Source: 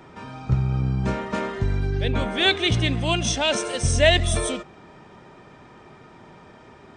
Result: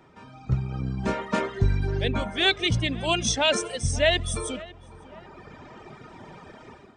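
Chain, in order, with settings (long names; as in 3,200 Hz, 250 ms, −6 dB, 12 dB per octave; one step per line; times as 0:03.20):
reverb reduction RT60 1.6 s
automatic gain control gain up to 14 dB
feedback echo with a low-pass in the loop 549 ms, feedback 44%, low-pass 2,100 Hz, level −18.5 dB
level −8.5 dB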